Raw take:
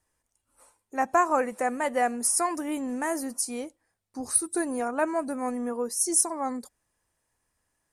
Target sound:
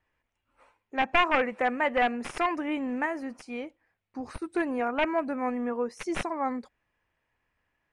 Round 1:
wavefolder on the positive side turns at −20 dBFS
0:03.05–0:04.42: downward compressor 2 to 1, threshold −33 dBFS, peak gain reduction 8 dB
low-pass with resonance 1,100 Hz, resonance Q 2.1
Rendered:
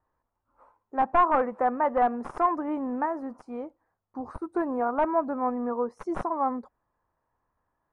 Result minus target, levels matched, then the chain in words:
2,000 Hz band −11.0 dB
wavefolder on the positive side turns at −20 dBFS
0:03.05–0:04.42: downward compressor 2 to 1, threshold −33 dBFS, peak gain reduction 8 dB
low-pass with resonance 2,500 Hz, resonance Q 2.1

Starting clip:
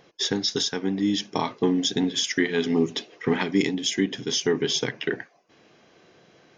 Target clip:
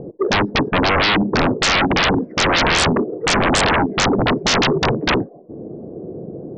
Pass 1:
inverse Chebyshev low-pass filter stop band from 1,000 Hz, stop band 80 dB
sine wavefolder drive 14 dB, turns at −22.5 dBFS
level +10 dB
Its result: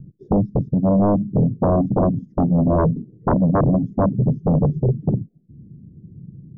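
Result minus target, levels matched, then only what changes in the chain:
1,000 Hz band −5.5 dB
change: inverse Chebyshev low-pass filter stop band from 2,900 Hz, stop band 80 dB

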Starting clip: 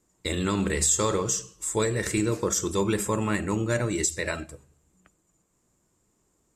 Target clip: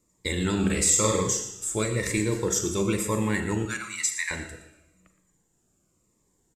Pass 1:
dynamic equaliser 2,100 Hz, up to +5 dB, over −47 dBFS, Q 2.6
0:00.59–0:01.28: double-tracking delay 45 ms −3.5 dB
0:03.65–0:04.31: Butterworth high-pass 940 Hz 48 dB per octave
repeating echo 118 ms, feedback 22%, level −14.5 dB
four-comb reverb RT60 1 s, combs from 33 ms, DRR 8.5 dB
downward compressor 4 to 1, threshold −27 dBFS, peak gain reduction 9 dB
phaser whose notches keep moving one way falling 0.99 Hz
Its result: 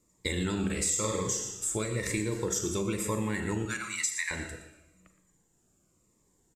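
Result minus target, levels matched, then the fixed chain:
downward compressor: peak gain reduction +9 dB
dynamic equaliser 2,100 Hz, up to +5 dB, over −47 dBFS, Q 2.6
0:00.59–0:01.28: double-tracking delay 45 ms −3.5 dB
0:03.65–0:04.31: Butterworth high-pass 940 Hz 48 dB per octave
repeating echo 118 ms, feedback 22%, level −14.5 dB
four-comb reverb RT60 1 s, combs from 33 ms, DRR 8.5 dB
phaser whose notches keep moving one way falling 0.99 Hz

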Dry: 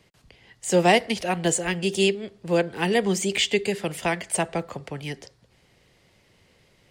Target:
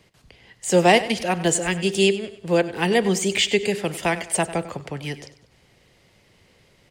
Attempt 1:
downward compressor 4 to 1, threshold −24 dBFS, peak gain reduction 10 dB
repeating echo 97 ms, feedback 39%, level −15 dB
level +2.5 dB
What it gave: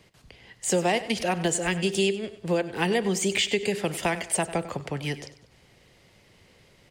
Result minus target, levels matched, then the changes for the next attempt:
downward compressor: peak gain reduction +10 dB
remove: downward compressor 4 to 1, threshold −24 dBFS, peak gain reduction 10 dB

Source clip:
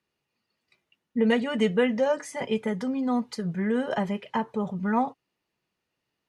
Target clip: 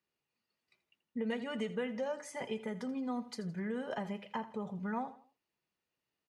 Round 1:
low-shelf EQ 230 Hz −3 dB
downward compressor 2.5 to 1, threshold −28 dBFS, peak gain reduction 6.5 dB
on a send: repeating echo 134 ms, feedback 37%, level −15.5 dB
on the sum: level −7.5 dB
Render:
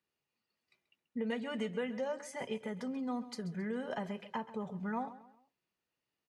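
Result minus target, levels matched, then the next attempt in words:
echo 52 ms late
low-shelf EQ 230 Hz −3 dB
downward compressor 2.5 to 1, threshold −28 dBFS, peak gain reduction 6.5 dB
on a send: repeating echo 82 ms, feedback 37%, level −15.5 dB
on the sum: level −7.5 dB

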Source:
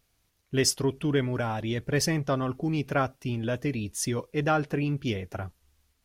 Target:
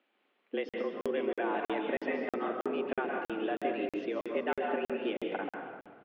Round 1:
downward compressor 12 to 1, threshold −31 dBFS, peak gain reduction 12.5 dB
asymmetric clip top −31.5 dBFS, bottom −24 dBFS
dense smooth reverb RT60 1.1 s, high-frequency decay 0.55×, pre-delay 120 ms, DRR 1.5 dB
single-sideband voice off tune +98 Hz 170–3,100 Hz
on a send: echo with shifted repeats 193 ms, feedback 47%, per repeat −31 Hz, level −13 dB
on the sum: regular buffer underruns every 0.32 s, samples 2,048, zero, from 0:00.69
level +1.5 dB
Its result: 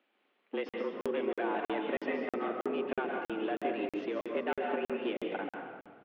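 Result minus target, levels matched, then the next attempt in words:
asymmetric clip: distortion +9 dB
downward compressor 12 to 1, threshold −31 dBFS, peak gain reduction 12.5 dB
asymmetric clip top −20.5 dBFS, bottom −24 dBFS
dense smooth reverb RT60 1.1 s, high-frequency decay 0.55×, pre-delay 120 ms, DRR 1.5 dB
single-sideband voice off tune +98 Hz 170–3,100 Hz
on a send: echo with shifted repeats 193 ms, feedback 47%, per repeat −31 Hz, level −13 dB
on the sum: regular buffer underruns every 0.32 s, samples 2,048, zero, from 0:00.69
level +1.5 dB

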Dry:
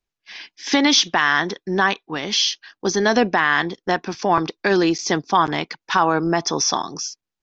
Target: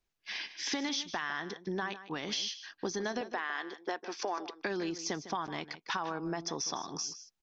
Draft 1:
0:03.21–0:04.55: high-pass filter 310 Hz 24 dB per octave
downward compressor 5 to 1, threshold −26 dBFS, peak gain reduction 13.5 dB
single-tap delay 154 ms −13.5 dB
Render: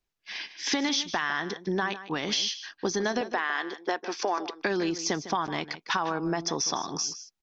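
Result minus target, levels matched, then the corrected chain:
downward compressor: peak gain reduction −7 dB
0:03.21–0:04.55: high-pass filter 310 Hz 24 dB per octave
downward compressor 5 to 1, threshold −35 dBFS, peak gain reduction 20.5 dB
single-tap delay 154 ms −13.5 dB

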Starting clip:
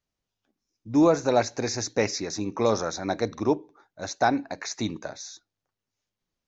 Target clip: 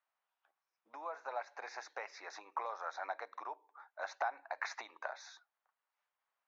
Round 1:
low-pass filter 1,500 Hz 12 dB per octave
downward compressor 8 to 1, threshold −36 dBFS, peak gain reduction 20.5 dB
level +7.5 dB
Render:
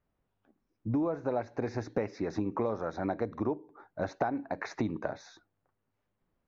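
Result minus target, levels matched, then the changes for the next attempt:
1,000 Hz band −6.5 dB
add after downward compressor: high-pass filter 810 Hz 24 dB per octave

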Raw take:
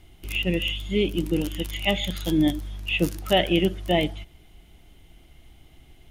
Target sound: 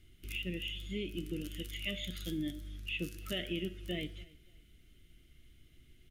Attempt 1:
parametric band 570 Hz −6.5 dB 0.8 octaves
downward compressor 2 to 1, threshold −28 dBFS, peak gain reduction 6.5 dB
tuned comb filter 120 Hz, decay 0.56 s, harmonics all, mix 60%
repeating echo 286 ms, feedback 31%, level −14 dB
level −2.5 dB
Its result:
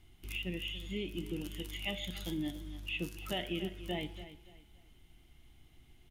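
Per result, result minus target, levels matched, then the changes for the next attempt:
1,000 Hz band +10.5 dB; echo-to-direct +9.5 dB
add first: Butterworth band-reject 880 Hz, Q 1.3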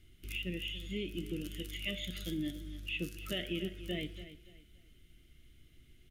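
echo-to-direct +9.5 dB
change: repeating echo 286 ms, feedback 31%, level −23.5 dB

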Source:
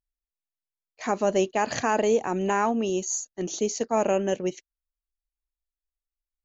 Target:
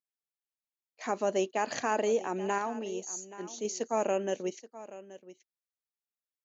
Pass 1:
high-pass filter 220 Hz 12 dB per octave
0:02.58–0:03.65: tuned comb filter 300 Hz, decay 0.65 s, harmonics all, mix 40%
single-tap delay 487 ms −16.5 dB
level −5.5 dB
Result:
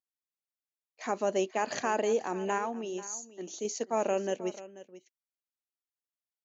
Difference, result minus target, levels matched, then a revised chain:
echo 341 ms early
high-pass filter 220 Hz 12 dB per octave
0:02.58–0:03.65: tuned comb filter 300 Hz, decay 0.65 s, harmonics all, mix 40%
single-tap delay 828 ms −16.5 dB
level −5.5 dB

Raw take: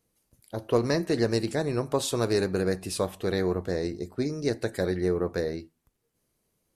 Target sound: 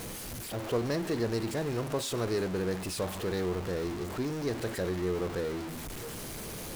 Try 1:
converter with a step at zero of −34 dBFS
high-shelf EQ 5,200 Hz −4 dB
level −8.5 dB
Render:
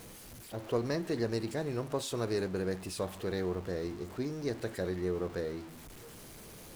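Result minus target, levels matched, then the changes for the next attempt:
converter with a step at zero: distortion −8 dB
change: converter with a step at zero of −24 dBFS

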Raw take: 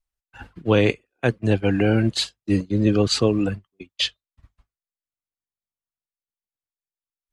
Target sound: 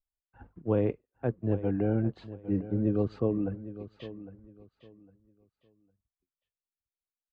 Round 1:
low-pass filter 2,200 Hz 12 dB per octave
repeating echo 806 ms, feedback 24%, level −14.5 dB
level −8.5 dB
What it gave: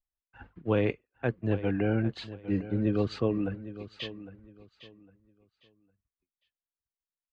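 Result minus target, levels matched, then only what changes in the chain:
2,000 Hz band +11.0 dB
change: low-pass filter 880 Hz 12 dB per octave

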